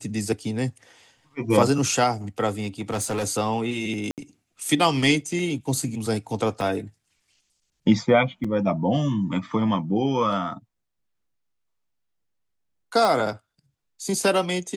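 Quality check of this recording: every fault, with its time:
2.51–3.24 clipped -22.5 dBFS
4.11–4.18 gap 68 ms
6.61 gap 2.4 ms
8.44 gap 4.9 ms
13.05 pop

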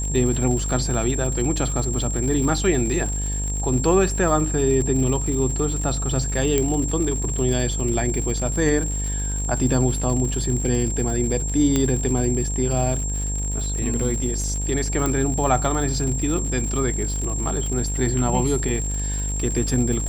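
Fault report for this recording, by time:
buzz 50 Hz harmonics 20 -26 dBFS
crackle 130/s -28 dBFS
tone 7500 Hz -28 dBFS
6.58 pop -6 dBFS
11.76 pop -7 dBFS
15.06 pop

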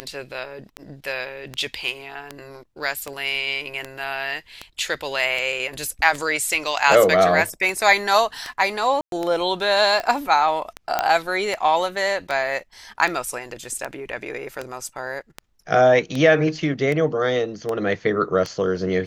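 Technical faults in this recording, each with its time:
tick 78 rpm -13 dBFS
9.01–9.12 gap 0.112 s
10.99 pop -6 dBFS
14.89 gap 2.6 ms

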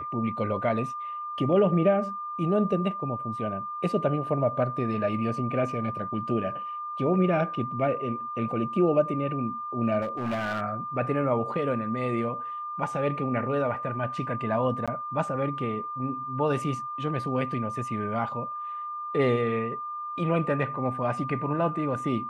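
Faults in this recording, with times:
tone 1200 Hz -32 dBFS
10.01–10.61 clipped -25.5 dBFS
14.86–14.88 gap 16 ms

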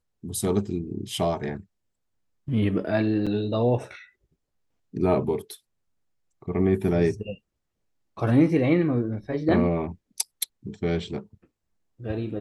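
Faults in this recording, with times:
3.26–3.27 gap 6.2 ms

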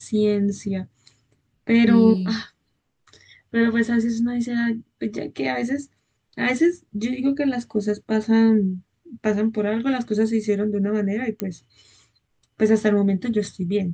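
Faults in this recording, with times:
11.4 pop -12 dBFS

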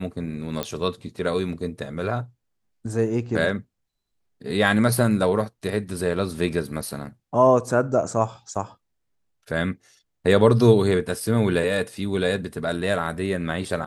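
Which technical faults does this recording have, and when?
0.63 pop -10 dBFS

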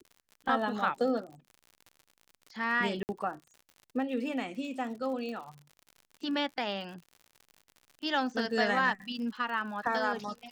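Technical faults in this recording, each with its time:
crackle 73/s -42 dBFS
3.03–3.09 gap 59 ms
5.29 pop

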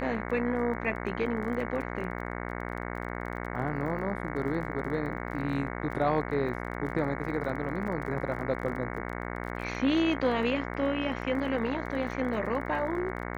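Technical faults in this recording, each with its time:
buzz 60 Hz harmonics 37 -36 dBFS
crackle 22/s -38 dBFS
5.67 gap 2.4 ms

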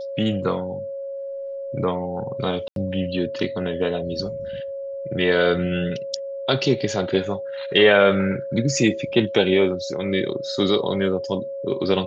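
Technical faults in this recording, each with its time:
tone 550 Hz -28 dBFS
2.68–2.76 gap 82 ms

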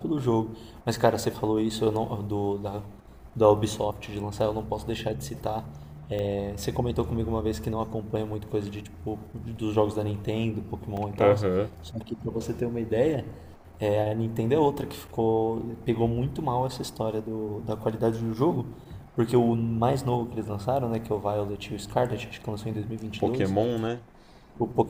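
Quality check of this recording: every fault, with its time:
6.19 pop -21 dBFS
10.97 gap 2.9 ms

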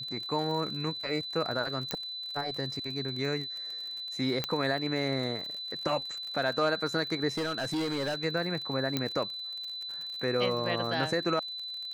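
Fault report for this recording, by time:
crackle 49/s -37 dBFS
tone 4000 Hz -36 dBFS
1.91 pop -14 dBFS
4.44 pop -14 dBFS
7.37–8.25 clipped -28 dBFS
8.97 pop -14 dBFS

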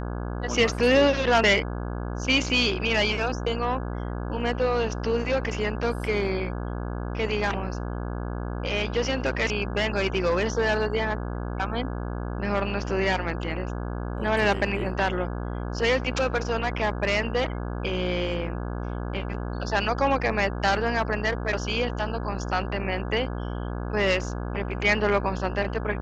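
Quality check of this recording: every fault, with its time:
buzz 60 Hz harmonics 28 -31 dBFS

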